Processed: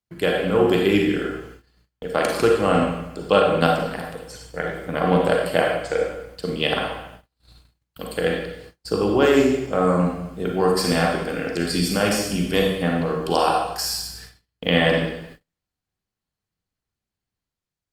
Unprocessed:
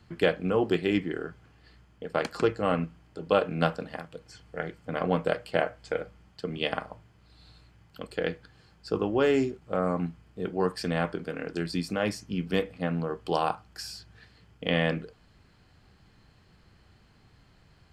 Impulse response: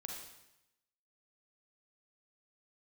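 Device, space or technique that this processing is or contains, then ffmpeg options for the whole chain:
speakerphone in a meeting room: -filter_complex "[0:a]aemphasis=mode=production:type=50fm[s0];[1:a]atrim=start_sample=2205[s1];[s0][s1]afir=irnorm=-1:irlink=0,dynaudnorm=f=110:g=9:m=1.68,agate=range=0.0178:threshold=0.00447:ratio=16:detection=peak,volume=2.11" -ar 48000 -c:a libopus -b:a 32k

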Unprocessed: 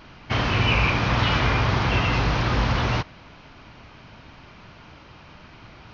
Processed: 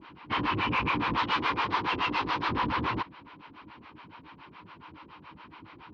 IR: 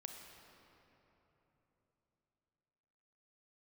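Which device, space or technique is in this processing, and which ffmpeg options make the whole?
guitar amplifier with harmonic tremolo: -filter_complex "[0:a]acrossover=split=470[s0][s1];[s0]aeval=exprs='val(0)*(1-1/2+1/2*cos(2*PI*7.1*n/s))':c=same[s2];[s1]aeval=exprs='val(0)*(1-1/2-1/2*cos(2*PI*7.1*n/s))':c=same[s3];[s2][s3]amix=inputs=2:normalize=0,asoftclip=type=tanh:threshold=0.0668,highpass=100,equalizer=f=120:t=q:w=4:g=-7,equalizer=f=310:t=q:w=4:g=8,equalizer=f=640:t=q:w=4:g=-9,equalizer=f=1000:t=q:w=4:g=10,lowpass=f=3900:w=0.5412,lowpass=f=3900:w=1.3066,asettb=1/sr,asplit=3[s4][s5][s6];[s4]atrim=end=1.174[s7];[s5]atrim=start=1.17:end=2.49,asetpts=PTS-STARTPTS,afade=t=in:d=0.004:c=qsin,afade=t=out:st=1.316:d=0.004:c=qsin,bass=f=250:g=-8,treble=f=4000:g=7[s8];[s6]atrim=start=2.486[s9];[s7][s8]acrossfade=d=0.004:c1=hsin:c2=qsin[s10];[s10][s9]acrossfade=d=0.004:c1=qsin:c2=hsin"

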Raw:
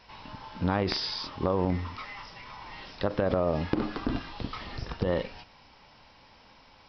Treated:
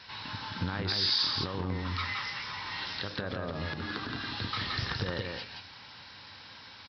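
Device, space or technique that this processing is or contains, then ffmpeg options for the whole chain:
broadcast voice chain: -af "highpass=83,deesser=0.75,acompressor=threshold=0.0251:ratio=4,equalizer=f=5100:t=o:w=2.3:g=2.5,alimiter=level_in=1.12:limit=0.0631:level=0:latency=1:release=193,volume=0.891,equalizer=f=100:t=o:w=0.67:g=8,equalizer=f=630:t=o:w=0.67:g=-4,equalizer=f=1600:t=o:w=0.67:g=9,equalizer=f=4000:t=o:w=0.67:g=10,aecho=1:1:171:0.631"

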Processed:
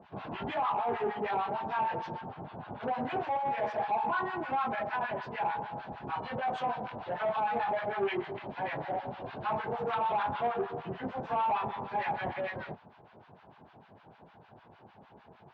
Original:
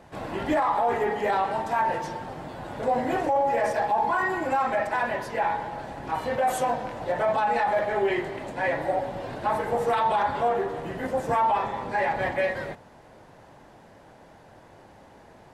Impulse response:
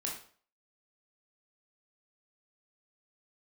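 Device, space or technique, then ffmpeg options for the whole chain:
guitar amplifier with harmonic tremolo: -filter_complex "[0:a]asettb=1/sr,asplit=3[s0][s1][s2];[s0]atrim=end=2.214[s3];[s1]atrim=start=2.21:end=2.81,asetpts=PTS-STARTPTS,afade=t=in:d=0.004:c=qsin,afade=t=out:st=0.596:d=0.004:c=qsin,aemphasis=mode=reproduction:type=75kf[s4];[s2]atrim=start=2.806[s5];[s3][s4]acrossfade=d=0.004:c1=hsin:c2=qsin[s6];[s6][s5]acrossfade=d=0.004:c1=qsin:c2=hsin,acrossover=split=950[s7][s8];[s7]aeval=exprs='val(0)*(1-1/2+1/2*cos(2*PI*6.6*n/s))':c=same[s9];[s8]aeval=exprs='val(0)*(1-1/2-1/2*cos(2*PI*6.6*n/s))':c=same[s10];[s9][s10]amix=inputs=2:normalize=0,asoftclip=type=tanh:threshold=0.0631,highpass=99,equalizer=f=300:t=q:w=4:g=-7,equalizer=f=540:t=q:w=4:g=-8,equalizer=f=1900:t=q:w=4:g=-8,lowpass=f=3500:w=0.5412,lowpass=f=3500:w=1.3066,volume=1.26"

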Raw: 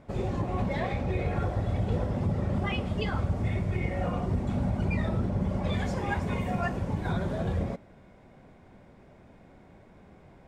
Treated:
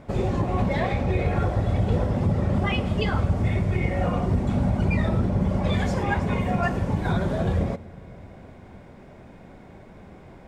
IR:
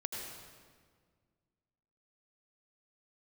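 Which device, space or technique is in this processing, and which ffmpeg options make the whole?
compressed reverb return: -filter_complex "[0:a]asplit=2[s0][s1];[1:a]atrim=start_sample=2205[s2];[s1][s2]afir=irnorm=-1:irlink=0,acompressor=threshold=0.0158:ratio=6,volume=0.422[s3];[s0][s3]amix=inputs=2:normalize=0,asettb=1/sr,asplit=3[s4][s5][s6];[s4]atrim=end=6.034[s7];[s5]atrim=start=6.03:end=6.63,asetpts=PTS-STARTPTS,afade=t=in:d=0.004:c=qsin,afade=t=out:st=0.596:d=0.004:c=qsin,highshelf=f=6200:g=-6.5[s8];[s6]atrim=start=6.626[s9];[s7][s8]acrossfade=d=0.004:c1=hsin:c2=qsin[s10];[s10][s9]acrossfade=d=0.004:c1=qsin:c2=hsin,volume=1.78"

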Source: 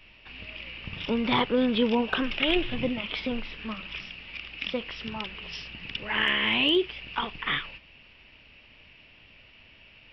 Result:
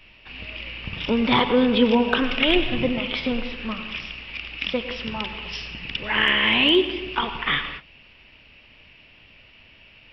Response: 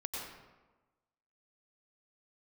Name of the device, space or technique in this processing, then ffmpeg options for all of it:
keyed gated reverb: -filter_complex "[0:a]asplit=3[s0][s1][s2];[1:a]atrim=start_sample=2205[s3];[s1][s3]afir=irnorm=-1:irlink=0[s4];[s2]apad=whole_len=446569[s5];[s4][s5]sidechaingate=range=0.0224:threshold=0.00562:ratio=16:detection=peak,volume=0.447[s6];[s0][s6]amix=inputs=2:normalize=0,volume=1.41"

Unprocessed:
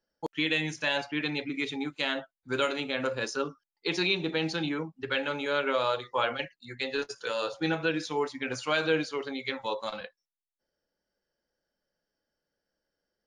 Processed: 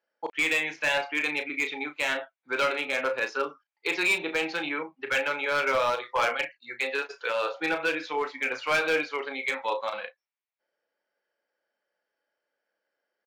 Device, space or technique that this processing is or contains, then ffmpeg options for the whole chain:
megaphone: -filter_complex "[0:a]highpass=530,lowpass=2700,equalizer=f=2300:t=o:w=0.3:g=6.5,asoftclip=type=hard:threshold=0.0596,asplit=2[s0][s1];[s1]adelay=34,volume=0.316[s2];[s0][s2]amix=inputs=2:normalize=0,volume=1.78"

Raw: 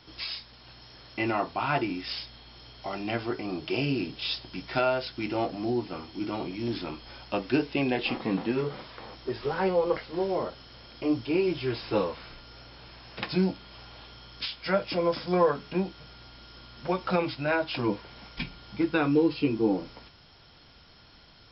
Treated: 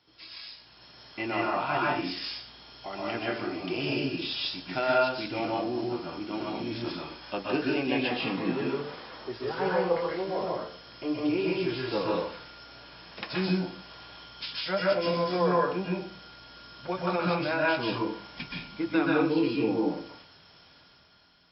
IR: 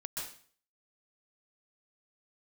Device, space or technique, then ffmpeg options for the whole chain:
far laptop microphone: -filter_complex "[1:a]atrim=start_sample=2205[s0];[0:a][s0]afir=irnorm=-1:irlink=0,highpass=f=170:p=1,dynaudnorm=f=120:g=13:m=2.66,volume=0.422"

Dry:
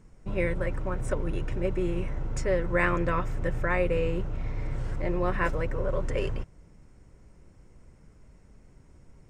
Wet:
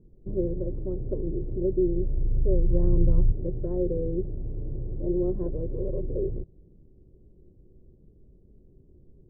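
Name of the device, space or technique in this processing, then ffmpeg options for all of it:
under water: -filter_complex "[0:a]asettb=1/sr,asplit=3[s0][s1][s2];[s0]atrim=end=1.734[s3];[s1]atrim=start=1.73:end=3.32,asetpts=PTS-STARTPTS,afade=t=in:d=0.004:c=qsin,afade=t=out:st=1.586:d=0.004:c=qsin,asubboost=boost=9.5:cutoff=140[s4];[s2]atrim=start=3.316[s5];[s3][s4]acrossfade=d=0.004:c1=hsin:c2=qsin[s6];[s6][s5]acrossfade=d=0.004:c1=qsin:c2=hsin,lowpass=f=490:w=0.5412,lowpass=f=490:w=1.3066,equalizer=f=370:t=o:w=0.28:g=9,volume=0.891"

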